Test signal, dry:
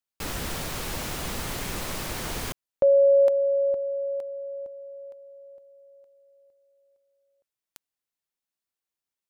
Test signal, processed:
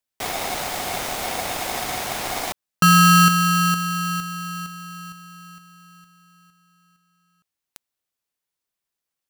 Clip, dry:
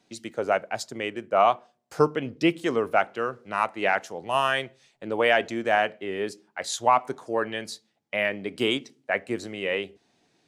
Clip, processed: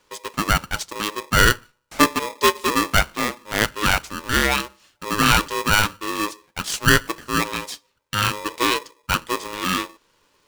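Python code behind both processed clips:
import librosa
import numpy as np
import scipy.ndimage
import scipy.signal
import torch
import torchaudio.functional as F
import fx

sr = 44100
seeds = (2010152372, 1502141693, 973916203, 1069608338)

y = x * np.sign(np.sin(2.0 * np.pi * 730.0 * np.arange(len(x)) / sr))
y = y * 10.0 ** (4.5 / 20.0)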